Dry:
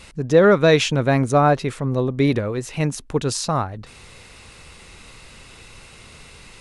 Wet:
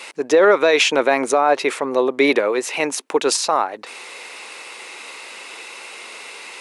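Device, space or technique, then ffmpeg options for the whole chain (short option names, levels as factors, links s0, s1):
laptop speaker: -af "highpass=f=340:w=0.5412,highpass=f=340:w=1.3066,equalizer=f=900:t=o:w=0.52:g=4.5,equalizer=f=2300:t=o:w=0.58:g=5,alimiter=limit=0.224:level=0:latency=1:release=92,volume=2.37"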